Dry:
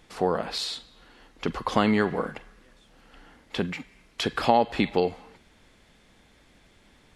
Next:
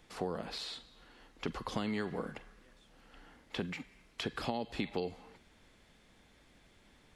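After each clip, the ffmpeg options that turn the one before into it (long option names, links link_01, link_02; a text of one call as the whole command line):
ffmpeg -i in.wav -filter_complex "[0:a]acrossover=split=400|3100[link_01][link_02][link_03];[link_01]acompressor=threshold=-30dB:ratio=4[link_04];[link_02]acompressor=threshold=-35dB:ratio=4[link_05];[link_03]acompressor=threshold=-40dB:ratio=4[link_06];[link_04][link_05][link_06]amix=inputs=3:normalize=0,volume=-5.5dB" out.wav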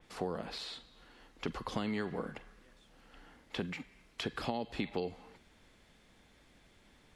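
ffmpeg -i in.wav -af "adynamicequalizer=threshold=0.00178:dfrequency=4100:dqfactor=0.7:tfrequency=4100:tqfactor=0.7:attack=5:release=100:ratio=0.375:range=2:mode=cutabove:tftype=highshelf" out.wav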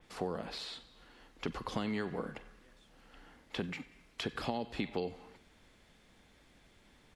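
ffmpeg -i in.wav -af "aecho=1:1:93|186|279|372:0.0794|0.0413|0.0215|0.0112" out.wav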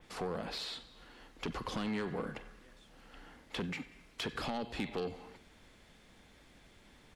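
ffmpeg -i in.wav -af "asoftclip=type=tanh:threshold=-33.5dB,volume=3dB" out.wav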